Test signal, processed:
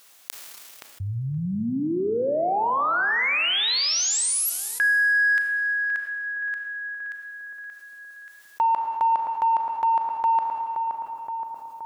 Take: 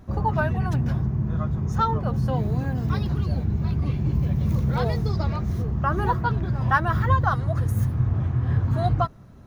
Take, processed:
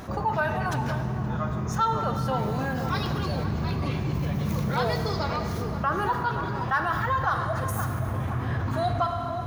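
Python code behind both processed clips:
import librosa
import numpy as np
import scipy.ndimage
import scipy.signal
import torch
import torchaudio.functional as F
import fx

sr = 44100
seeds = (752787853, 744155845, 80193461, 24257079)

p1 = fx.low_shelf(x, sr, hz=380.0, db=-11.5)
p2 = 10.0 ** (-18.0 / 20.0) * np.tanh(p1 / 10.0 ** (-18.0 / 20.0))
p3 = p1 + (p2 * 10.0 ** (-8.0 / 20.0))
p4 = fx.low_shelf(p3, sr, hz=85.0, db=-8.0)
p5 = p4 + fx.echo_filtered(p4, sr, ms=522, feedback_pct=45, hz=1300.0, wet_db=-11.0, dry=0)
p6 = fx.rider(p5, sr, range_db=4, speed_s=2.0)
p7 = fx.rev_schroeder(p6, sr, rt60_s=1.9, comb_ms=27, drr_db=8.5)
p8 = fx.env_flatten(p7, sr, amount_pct=50)
y = p8 * 10.0 ** (-5.0 / 20.0)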